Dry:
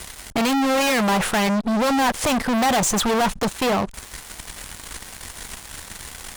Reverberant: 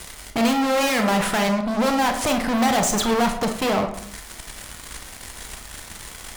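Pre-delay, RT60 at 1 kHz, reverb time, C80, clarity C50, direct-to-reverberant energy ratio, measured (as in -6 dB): 27 ms, 0.65 s, 0.65 s, 11.5 dB, 8.0 dB, 4.5 dB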